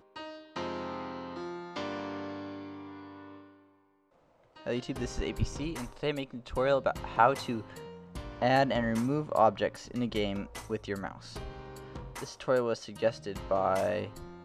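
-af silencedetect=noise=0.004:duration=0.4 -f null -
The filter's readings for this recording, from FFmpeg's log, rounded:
silence_start: 3.51
silence_end: 4.56 | silence_duration: 1.05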